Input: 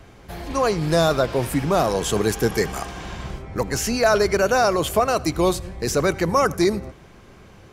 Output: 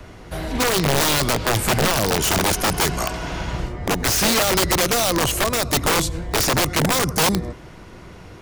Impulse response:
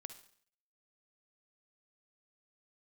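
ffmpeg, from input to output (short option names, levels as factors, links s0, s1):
-filter_complex "[0:a]asetrate=40517,aresample=44100,acrossover=split=260|3000[s0][s1][s2];[s1]acompressor=threshold=0.0562:ratio=5[s3];[s0][s3][s2]amix=inputs=3:normalize=0,aeval=exprs='(mod(8.41*val(0)+1,2)-1)/8.41':c=same,volume=2"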